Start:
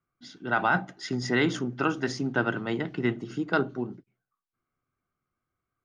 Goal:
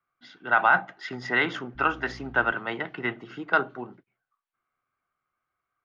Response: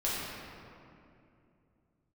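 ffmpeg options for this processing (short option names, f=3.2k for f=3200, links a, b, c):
-filter_complex "[0:a]asettb=1/sr,asplit=3[a][b][c];[a]atrim=end=1.754[d];[b]atrim=start=1.75:end=2.52,asetpts=PTS-STARTPTS,afade=t=in:d=0.004:c=qsin,afade=t=out:st=0.766:d=0.004:c=qsin,aeval=exprs='val(0)+0.0158*(sin(2*PI*60*n/s)+sin(2*PI*2*60*n/s)/2+sin(2*PI*3*60*n/s)/3+sin(2*PI*4*60*n/s)/4+sin(2*PI*5*60*n/s)/5)':c=same[e];[c]atrim=start=2.516[f];[d][e]acrossfade=d=0.004:c1=hsin:c2=qsin[g];[g][f]acrossfade=d=0.004:c1=qsin:c2=hsin,acrossover=split=600 3300:gain=0.178 1 0.0794[h][i][j];[h][i][j]amix=inputs=3:normalize=0,volume=6dB"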